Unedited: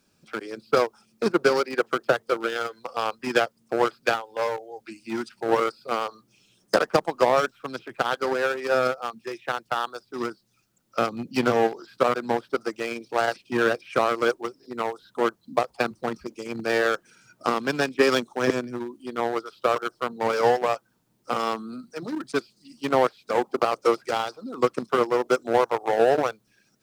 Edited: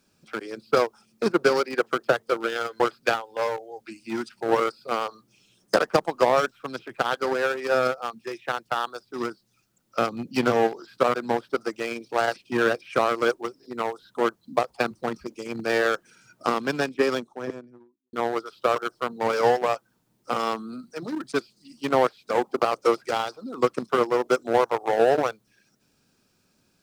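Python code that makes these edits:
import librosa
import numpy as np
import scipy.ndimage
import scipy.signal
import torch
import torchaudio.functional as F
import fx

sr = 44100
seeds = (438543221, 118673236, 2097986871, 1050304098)

y = fx.studio_fade_out(x, sr, start_s=17.5, length_s=1.63)
y = fx.edit(y, sr, fx.cut(start_s=2.8, length_s=1.0), tone=tone)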